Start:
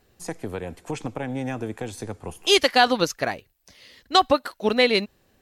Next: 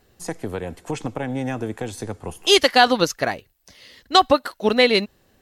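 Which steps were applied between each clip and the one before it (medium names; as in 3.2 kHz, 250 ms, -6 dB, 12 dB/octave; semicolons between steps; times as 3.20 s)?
band-stop 2.4 kHz, Q 21; trim +3 dB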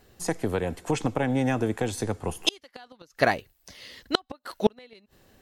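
inverted gate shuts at -8 dBFS, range -36 dB; trim +1.5 dB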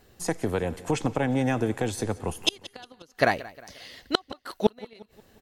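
feedback delay 178 ms, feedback 46%, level -19.5 dB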